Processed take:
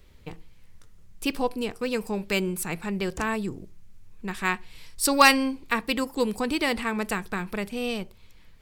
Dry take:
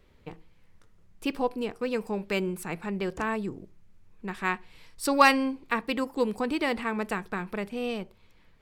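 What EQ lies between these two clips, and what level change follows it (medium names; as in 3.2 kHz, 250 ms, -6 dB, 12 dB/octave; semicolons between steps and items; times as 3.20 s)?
bass shelf 130 Hz +9 dB; treble shelf 3.1 kHz +11.5 dB; 0.0 dB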